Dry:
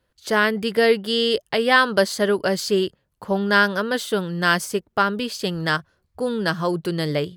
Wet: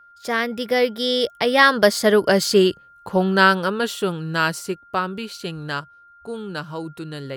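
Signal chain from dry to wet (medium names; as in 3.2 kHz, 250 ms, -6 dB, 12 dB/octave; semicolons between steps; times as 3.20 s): Doppler pass-by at 2.52 s, 30 m/s, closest 28 m; whistle 1.4 kHz -52 dBFS; trim +5 dB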